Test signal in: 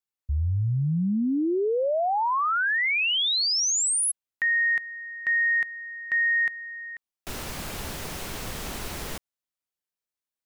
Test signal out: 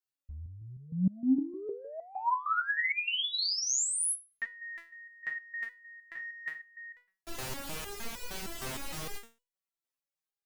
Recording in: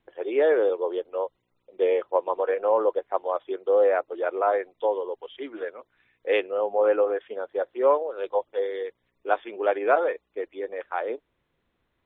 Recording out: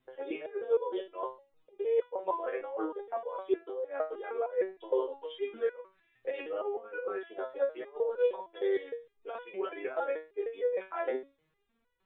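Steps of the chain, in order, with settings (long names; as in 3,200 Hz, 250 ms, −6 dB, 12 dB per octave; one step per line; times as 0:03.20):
compressor whose output falls as the input rises −25 dBFS, ratio −0.5
step-sequenced resonator 6.5 Hz 130–490 Hz
level +6.5 dB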